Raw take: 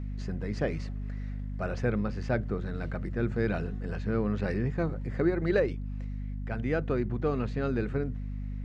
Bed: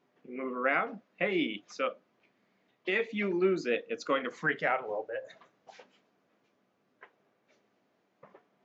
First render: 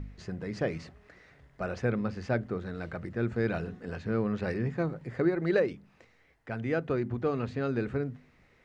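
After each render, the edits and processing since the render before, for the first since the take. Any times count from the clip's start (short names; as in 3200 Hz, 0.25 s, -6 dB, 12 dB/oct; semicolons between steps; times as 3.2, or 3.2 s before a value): de-hum 50 Hz, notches 5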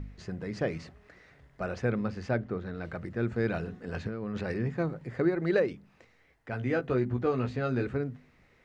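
2.31–2.85 air absorption 87 m; 3.94–4.5 negative-ratio compressor -34 dBFS; 6.51–7.87 doubler 16 ms -4.5 dB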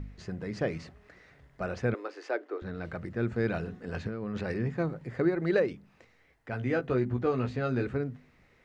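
1.94–2.62 Chebyshev high-pass 300 Hz, order 6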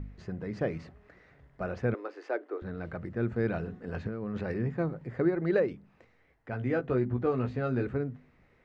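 high shelf 3200 Hz -12 dB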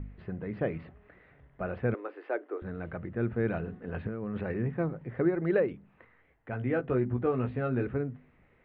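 steep low-pass 3400 Hz 36 dB/oct; 5.99–6.2 spectral gain 900–2100 Hz +7 dB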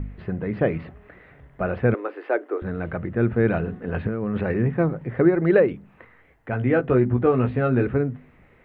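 gain +9.5 dB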